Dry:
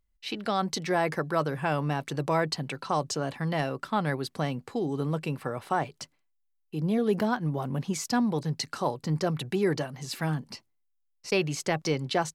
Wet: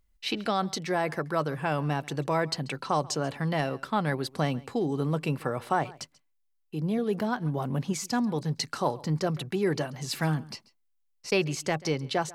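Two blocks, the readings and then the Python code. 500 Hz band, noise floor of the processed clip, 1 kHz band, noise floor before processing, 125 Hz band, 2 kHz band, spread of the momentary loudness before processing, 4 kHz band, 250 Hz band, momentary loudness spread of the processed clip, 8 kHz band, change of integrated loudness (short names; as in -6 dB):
-0.5 dB, -71 dBFS, 0.0 dB, -73 dBFS, +0.5 dB, 0.0 dB, 7 LU, +0.5 dB, -0.5 dB, 5 LU, 0.0 dB, 0.0 dB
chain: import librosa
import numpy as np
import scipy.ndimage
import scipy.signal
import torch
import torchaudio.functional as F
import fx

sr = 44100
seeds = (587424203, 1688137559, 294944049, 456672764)

p1 = fx.rider(x, sr, range_db=10, speed_s=0.5)
y = p1 + fx.echo_single(p1, sr, ms=137, db=-22.0, dry=0)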